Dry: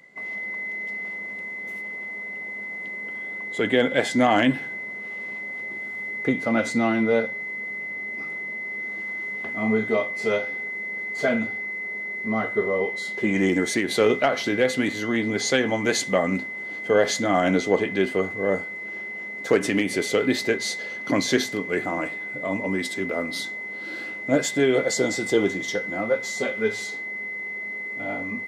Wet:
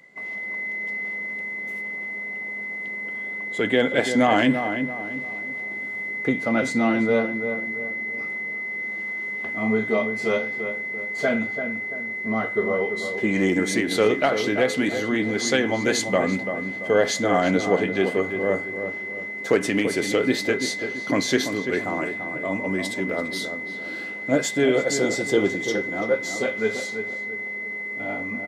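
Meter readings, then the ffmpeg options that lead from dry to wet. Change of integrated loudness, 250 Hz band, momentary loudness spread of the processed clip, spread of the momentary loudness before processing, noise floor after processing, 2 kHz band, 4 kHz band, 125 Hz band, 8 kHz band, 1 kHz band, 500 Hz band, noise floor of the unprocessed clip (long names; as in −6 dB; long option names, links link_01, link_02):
+1.0 dB, +1.0 dB, 9 LU, 10 LU, −32 dBFS, +1.0 dB, 0.0 dB, +0.5 dB, 0.0 dB, +0.5 dB, +0.5 dB, −34 dBFS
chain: -filter_complex "[0:a]asplit=2[link_01][link_02];[link_02]adelay=338,lowpass=frequency=1600:poles=1,volume=-7.5dB,asplit=2[link_03][link_04];[link_04]adelay=338,lowpass=frequency=1600:poles=1,volume=0.41,asplit=2[link_05][link_06];[link_06]adelay=338,lowpass=frequency=1600:poles=1,volume=0.41,asplit=2[link_07][link_08];[link_08]adelay=338,lowpass=frequency=1600:poles=1,volume=0.41,asplit=2[link_09][link_10];[link_10]adelay=338,lowpass=frequency=1600:poles=1,volume=0.41[link_11];[link_01][link_03][link_05][link_07][link_09][link_11]amix=inputs=6:normalize=0"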